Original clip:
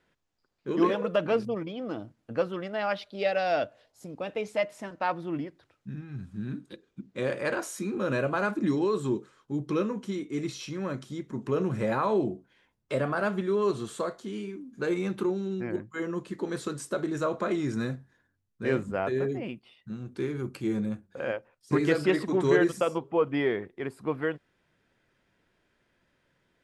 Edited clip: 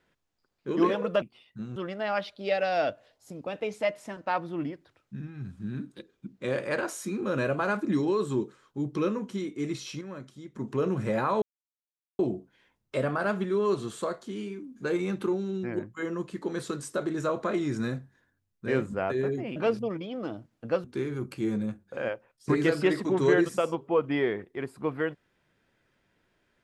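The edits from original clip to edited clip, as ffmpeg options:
ffmpeg -i in.wav -filter_complex "[0:a]asplit=8[link_01][link_02][link_03][link_04][link_05][link_06][link_07][link_08];[link_01]atrim=end=1.222[link_09];[link_02]atrim=start=19.528:end=20.072[link_10];[link_03]atrim=start=2.498:end=10.752[link_11];[link_04]atrim=start=10.748:end=11.292,asetpts=PTS-STARTPTS,volume=-8dB[link_12];[link_05]atrim=start=11.288:end=12.16,asetpts=PTS-STARTPTS,afade=type=out:start_time=0.868:duration=0.004:curve=hsin,apad=pad_dur=0.77[link_13];[link_06]atrim=start=12.16:end=19.532,asetpts=PTS-STARTPTS,afade=type=in:duration=0.004:curve=hsin[link_14];[link_07]atrim=start=1.218:end=2.502[link_15];[link_08]atrim=start=20.068[link_16];[link_09][link_10]acrossfade=duration=0.004:curve1=hsin:curve2=hsin[link_17];[link_17][link_11]acrossfade=duration=0.004:curve1=hsin:curve2=hsin[link_18];[link_18][link_12]acrossfade=duration=0.004:curve1=hsin:curve2=hsin[link_19];[link_13][link_14]concat=n=2:v=0:a=1[link_20];[link_19][link_20]acrossfade=duration=0.004:curve1=hsin:curve2=hsin[link_21];[link_21][link_15]acrossfade=duration=0.004:curve1=hsin:curve2=hsin[link_22];[link_22][link_16]acrossfade=duration=0.004:curve1=hsin:curve2=hsin" out.wav

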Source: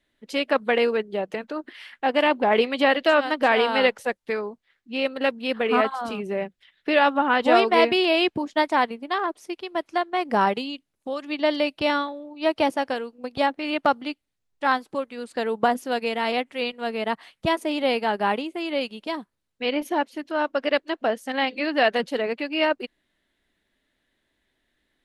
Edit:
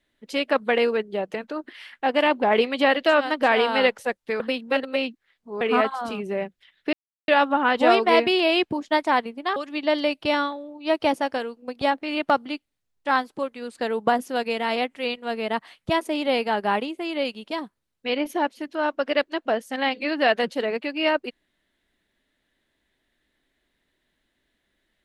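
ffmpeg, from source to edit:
ffmpeg -i in.wav -filter_complex "[0:a]asplit=5[link_01][link_02][link_03][link_04][link_05];[link_01]atrim=end=4.402[link_06];[link_02]atrim=start=4.398:end=5.612,asetpts=PTS-STARTPTS,areverse[link_07];[link_03]atrim=start=5.608:end=6.93,asetpts=PTS-STARTPTS,afade=type=out:start_time=1.318:duration=0.004:curve=hsin,apad=pad_dur=0.35[link_08];[link_04]atrim=start=6.93:end=9.212,asetpts=PTS-STARTPTS,afade=type=in:duration=0.004:curve=hsin[link_09];[link_05]atrim=start=11.118[link_10];[link_06][link_07]acrossfade=duration=0.004:curve1=hsin:curve2=hsin[link_11];[link_08][link_09]concat=n=2:v=0:a=1[link_12];[link_11][link_12]acrossfade=duration=0.004:curve1=hsin:curve2=hsin[link_13];[link_13][link_10]acrossfade=duration=0.004:curve1=hsin:curve2=hsin" out.wav

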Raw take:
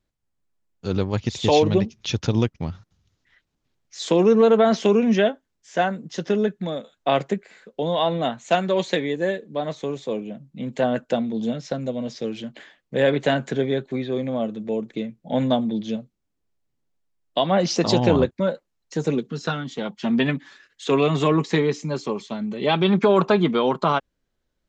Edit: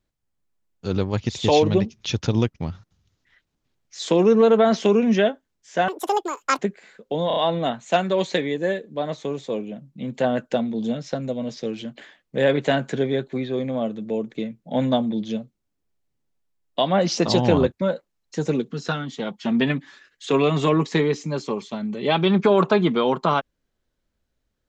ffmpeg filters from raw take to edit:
ffmpeg -i in.wav -filter_complex "[0:a]asplit=6[link_01][link_02][link_03][link_04][link_05][link_06];[link_01]atrim=end=5.884[link_07];[link_02]atrim=start=5.88:end=7.26,asetpts=PTS-STARTPTS,asetrate=86436,aresample=44100[link_08];[link_03]atrim=start=7.256:end=7.982[link_09];[link_04]atrim=start=7.948:end=7.982[link_10];[link_05]atrim=start=7.948:end=7.982[link_11];[link_06]atrim=start=7.948[link_12];[link_07][link_08]acrossfade=duration=0.004:curve1=hsin:curve2=hsin[link_13];[link_13][link_09]acrossfade=duration=0.004:curve1=hsin:curve2=hsin[link_14];[link_14][link_10]acrossfade=duration=0.004:curve1=hsin:curve2=hsin[link_15];[link_15][link_11]acrossfade=duration=0.004:curve1=hsin:curve2=hsin[link_16];[link_16][link_12]acrossfade=duration=0.004:curve1=hsin:curve2=hsin" out.wav

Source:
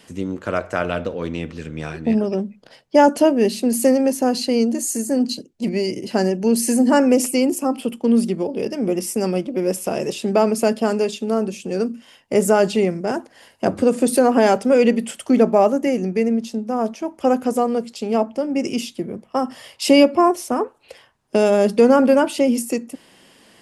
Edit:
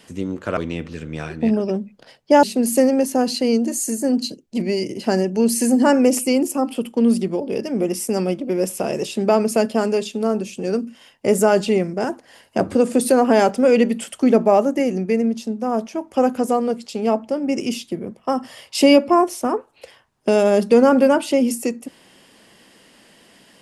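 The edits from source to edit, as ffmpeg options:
ffmpeg -i in.wav -filter_complex "[0:a]asplit=3[link_01][link_02][link_03];[link_01]atrim=end=0.572[link_04];[link_02]atrim=start=1.208:end=3.072[link_05];[link_03]atrim=start=3.498[link_06];[link_04][link_05]acrossfade=duration=0.004:curve1=hsin:curve2=hsin[link_07];[link_07][link_06]acrossfade=duration=0.004:curve1=hsin:curve2=hsin" out.wav

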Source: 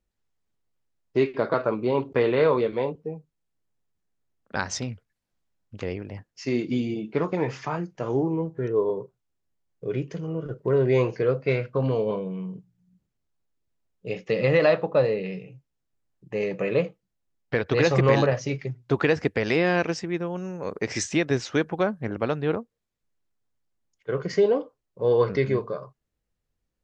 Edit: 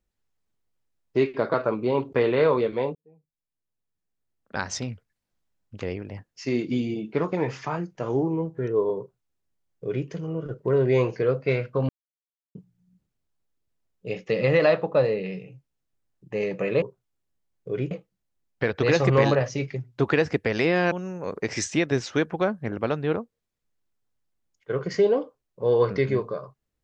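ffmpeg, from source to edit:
ffmpeg -i in.wav -filter_complex "[0:a]asplit=7[link_01][link_02][link_03][link_04][link_05][link_06][link_07];[link_01]atrim=end=2.95,asetpts=PTS-STARTPTS,afade=type=out:start_time=2.946:duration=0.004:curve=hsin[link_08];[link_02]atrim=start=2.95:end=11.89,asetpts=PTS-STARTPTS,afade=type=in:duration=1.95,afade=type=out:start_time=8.936:duration=0.004:curve=hsin[link_09];[link_03]atrim=start=11.89:end=12.55,asetpts=PTS-STARTPTS,volume=0[link_10];[link_04]atrim=start=12.55:end=16.822,asetpts=PTS-STARTPTS,afade=type=in:duration=0.004:curve=hsin[link_11];[link_05]atrim=start=8.978:end=10.072[link_12];[link_06]atrim=start=16.818:end=19.832[link_13];[link_07]atrim=start=20.308[link_14];[link_08][link_09][link_10][link_11]concat=n=4:v=0:a=1[link_15];[link_15][link_12]acrossfade=duration=0.004:curve1=hsin:curve2=hsin[link_16];[link_16][link_13]acrossfade=duration=0.004:curve1=hsin:curve2=hsin[link_17];[link_17][link_14]acrossfade=duration=0.004:curve1=hsin:curve2=hsin" out.wav

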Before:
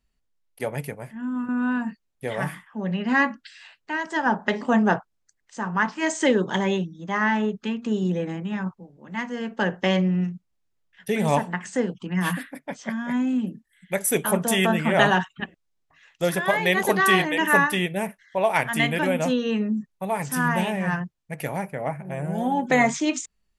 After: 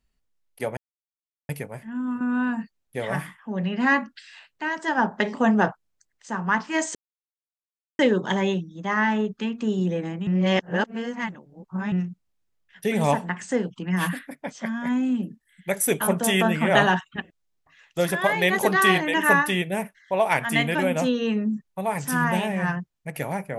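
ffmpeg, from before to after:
ffmpeg -i in.wav -filter_complex "[0:a]asplit=5[link_01][link_02][link_03][link_04][link_05];[link_01]atrim=end=0.77,asetpts=PTS-STARTPTS,afade=type=out:start_time=0.766:duration=0.004:curve=hsin,apad=pad_dur=0.72[link_06];[link_02]atrim=start=0.77:end=6.23,asetpts=PTS-STARTPTS,afade=type=in:duration=0.004:curve=hsin,afade=type=out:start_time=5.456:duration=0.004:curve=hsin,apad=pad_dur=1.04[link_07];[link_03]atrim=start=6.23:end=8.512,asetpts=PTS-STARTPTS,afade=type=in:duration=0.004:curve=hsin[link_08];[link_04]atrim=start=8.508:end=10.162,asetpts=PTS-STARTPTS,areverse[link_09];[link_05]atrim=start=10.158[link_10];[link_06][link_07][link_08]concat=n=3:v=0:a=1[link_11];[link_11][link_09]acrossfade=duration=0.004:curve1=hsin:curve2=hsin[link_12];[link_12][link_10]acrossfade=duration=0.004:curve1=hsin:curve2=hsin" out.wav

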